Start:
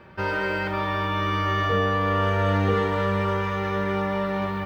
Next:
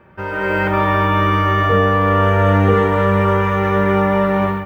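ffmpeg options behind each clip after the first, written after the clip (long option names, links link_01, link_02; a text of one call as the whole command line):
ffmpeg -i in.wav -af "equalizer=frequency=4500:width=1.4:gain=-13.5,dynaudnorm=framelen=300:gausssize=3:maxgain=12dB" out.wav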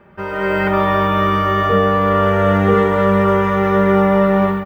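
ffmpeg -i in.wav -af "aecho=1:1:4.9:0.46" out.wav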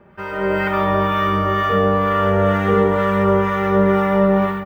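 ffmpeg -i in.wav -filter_complex "[0:a]acrossover=split=970[link_01][link_02];[link_01]aeval=exprs='val(0)*(1-0.5/2+0.5/2*cos(2*PI*2.1*n/s))':channel_layout=same[link_03];[link_02]aeval=exprs='val(0)*(1-0.5/2-0.5/2*cos(2*PI*2.1*n/s))':channel_layout=same[link_04];[link_03][link_04]amix=inputs=2:normalize=0" out.wav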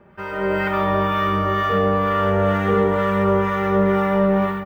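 ffmpeg -i in.wav -af "asoftclip=type=tanh:threshold=-5.5dB,volume=-1.5dB" out.wav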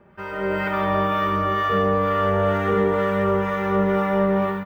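ffmpeg -i in.wav -af "aecho=1:1:171:0.299,volume=-2.5dB" out.wav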